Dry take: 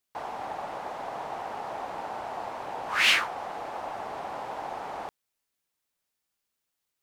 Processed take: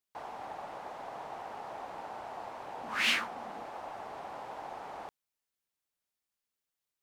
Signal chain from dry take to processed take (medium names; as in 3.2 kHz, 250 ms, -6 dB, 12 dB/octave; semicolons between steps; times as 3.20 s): 2.81–3.64 s: peaking EQ 230 Hz +13 dB 0.53 oct; trim -7 dB